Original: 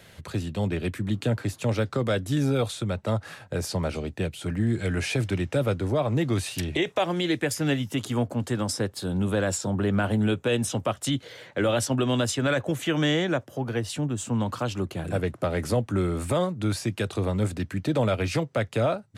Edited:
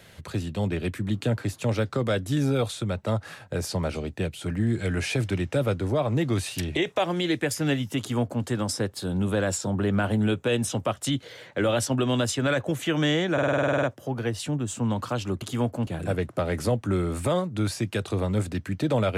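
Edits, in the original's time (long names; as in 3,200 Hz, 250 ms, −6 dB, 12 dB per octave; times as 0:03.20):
0:07.99–0:08.44: duplicate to 0:14.92
0:13.33: stutter 0.05 s, 11 plays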